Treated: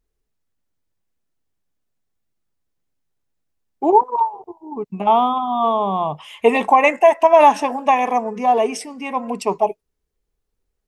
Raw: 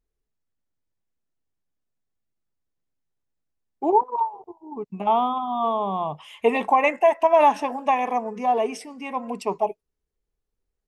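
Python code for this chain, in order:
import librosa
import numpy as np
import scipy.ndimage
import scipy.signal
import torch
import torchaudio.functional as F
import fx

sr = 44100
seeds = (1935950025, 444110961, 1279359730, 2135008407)

y = fx.dynamic_eq(x, sr, hz=7500.0, q=0.97, threshold_db=-45.0, ratio=4.0, max_db=5)
y = F.gain(torch.from_numpy(y), 5.5).numpy()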